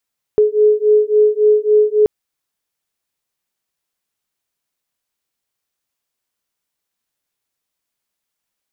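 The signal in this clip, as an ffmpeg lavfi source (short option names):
-f lavfi -i "aevalsrc='0.237*(sin(2*PI*422*t)+sin(2*PI*425.6*t))':d=1.68:s=44100"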